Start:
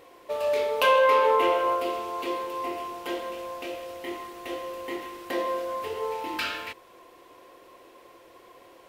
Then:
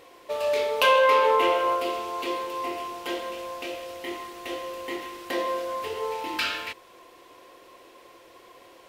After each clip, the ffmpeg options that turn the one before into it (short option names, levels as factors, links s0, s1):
-af "equalizer=f=4700:w=0.45:g=4.5"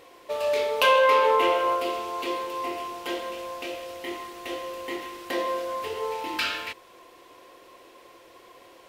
-af anull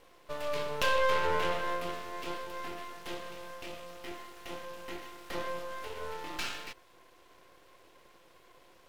-af "aeval=exprs='max(val(0),0)':c=same,volume=0.562"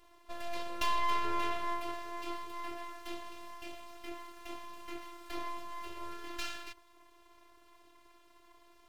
-af "afftfilt=real='hypot(re,im)*cos(PI*b)':imag='0':win_size=512:overlap=0.75"